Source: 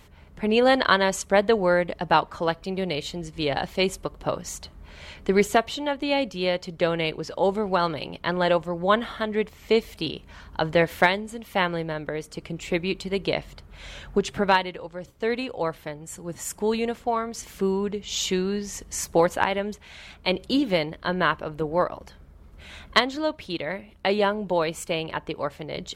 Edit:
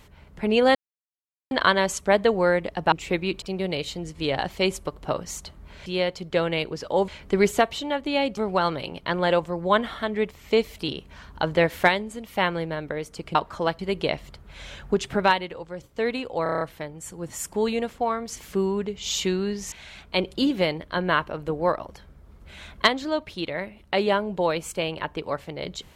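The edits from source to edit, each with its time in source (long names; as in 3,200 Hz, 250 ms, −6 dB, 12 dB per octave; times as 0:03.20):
0:00.75: splice in silence 0.76 s
0:02.16–0:02.60: swap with 0:12.53–0:13.03
0:06.33–0:07.55: move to 0:05.04
0:15.67: stutter 0.03 s, 7 plays
0:18.78–0:19.84: remove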